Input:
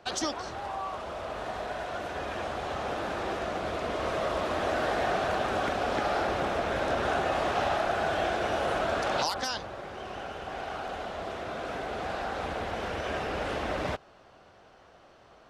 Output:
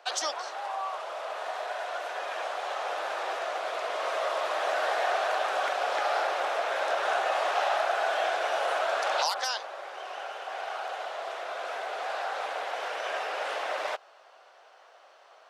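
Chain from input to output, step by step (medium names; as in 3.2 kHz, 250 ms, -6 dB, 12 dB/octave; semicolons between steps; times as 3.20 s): high-pass 550 Hz 24 dB/octave; trim +2 dB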